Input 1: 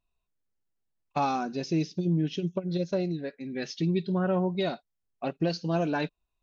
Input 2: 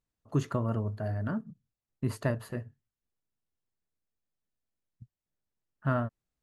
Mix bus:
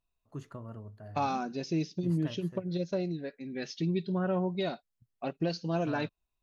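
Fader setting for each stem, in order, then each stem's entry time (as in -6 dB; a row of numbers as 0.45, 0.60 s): -3.5, -13.5 dB; 0.00, 0.00 s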